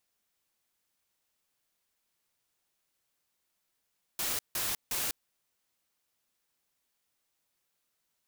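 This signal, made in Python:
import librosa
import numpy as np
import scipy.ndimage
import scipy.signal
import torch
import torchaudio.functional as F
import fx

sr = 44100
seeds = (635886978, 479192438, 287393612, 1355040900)

y = fx.noise_burst(sr, seeds[0], colour='white', on_s=0.2, off_s=0.16, bursts=3, level_db=-32.5)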